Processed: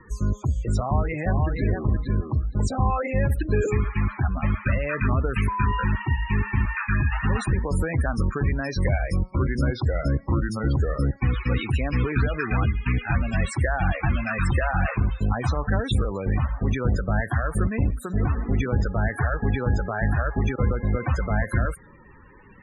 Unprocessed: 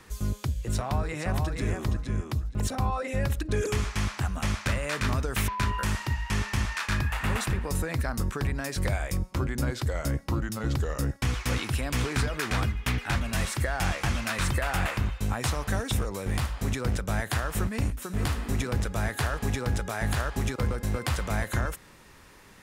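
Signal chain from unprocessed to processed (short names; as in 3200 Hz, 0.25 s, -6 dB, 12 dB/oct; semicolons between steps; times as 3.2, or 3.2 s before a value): loudest bins only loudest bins 32; gain +5.5 dB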